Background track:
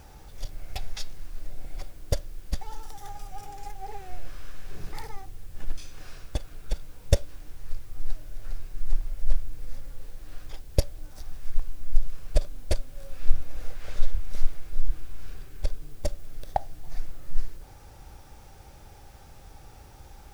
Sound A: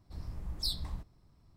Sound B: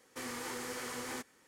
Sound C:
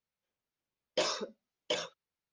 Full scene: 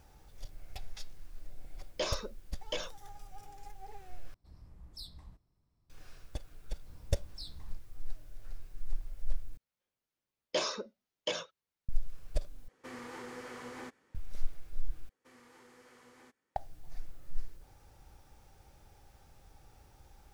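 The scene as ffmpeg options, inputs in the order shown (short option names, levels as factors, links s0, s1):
-filter_complex "[3:a]asplit=2[s0][s1];[1:a]asplit=2[s2][s3];[2:a]asplit=2[s4][s5];[0:a]volume=0.299[s6];[s3]lowpass=8900[s7];[s4]lowpass=f=2000:p=1[s8];[s5]highshelf=f=4700:g=-9.5[s9];[s6]asplit=5[s10][s11][s12][s13][s14];[s10]atrim=end=4.344[s15];[s2]atrim=end=1.56,asetpts=PTS-STARTPTS,volume=0.224[s16];[s11]atrim=start=5.896:end=9.574[s17];[s1]atrim=end=2.32,asetpts=PTS-STARTPTS,volume=0.891[s18];[s12]atrim=start=11.886:end=12.684[s19];[s8]atrim=end=1.47,asetpts=PTS-STARTPTS,volume=0.75[s20];[s13]atrim=start=14.146:end=15.094[s21];[s9]atrim=end=1.47,asetpts=PTS-STARTPTS,volume=0.141[s22];[s14]atrim=start=16.556[s23];[s0]atrim=end=2.32,asetpts=PTS-STARTPTS,volume=0.668,afade=t=in:d=0.004:c=hsin,afade=t=out:st=2.316:d=0.004:c=hsin,adelay=1020[s24];[s7]atrim=end=1.56,asetpts=PTS-STARTPTS,volume=0.251,afade=t=in:d=0.004:c=hsin,afade=t=out:st=1.556:d=0.004:c=hsin,adelay=6750[s25];[s15][s16]acrossfade=d=0.004:c1=hsin:c2=hsin[s26];[s26][s17]acrossfade=d=0.004:c1=hsin:c2=hsin[s27];[s27][s18]acrossfade=d=0.004:c1=hsin:c2=hsin[s28];[s28][s19]acrossfade=d=0.004:c1=hsin:c2=hsin[s29];[s29][s20]acrossfade=d=0.004:c1=hsin:c2=hsin[s30];[s30][s21]acrossfade=d=0.004:c1=hsin:c2=hsin[s31];[s31][s22]acrossfade=d=0.004:c1=hsin:c2=hsin[s32];[s32][s23]acrossfade=d=0.004:c1=hsin:c2=hsin[s33];[s33][s24][s25]amix=inputs=3:normalize=0"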